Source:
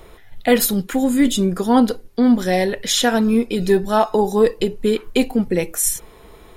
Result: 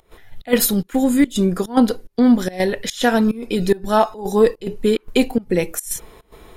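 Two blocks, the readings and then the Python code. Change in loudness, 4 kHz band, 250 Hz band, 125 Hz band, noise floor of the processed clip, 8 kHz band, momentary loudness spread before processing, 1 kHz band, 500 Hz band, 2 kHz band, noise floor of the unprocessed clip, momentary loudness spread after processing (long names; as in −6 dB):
−0.5 dB, −3.5 dB, 0.0 dB, 0.0 dB, −56 dBFS, −4.0 dB, 4 LU, −1.0 dB, −0.5 dB, −0.5 dB, −45 dBFS, 6 LU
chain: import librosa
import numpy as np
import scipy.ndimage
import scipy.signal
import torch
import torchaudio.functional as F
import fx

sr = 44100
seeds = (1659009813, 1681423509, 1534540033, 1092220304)

y = fx.volume_shaper(x, sr, bpm=145, per_beat=1, depth_db=-22, release_ms=113.0, shape='slow start')
y = F.gain(torch.from_numpy(y), 1.0).numpy()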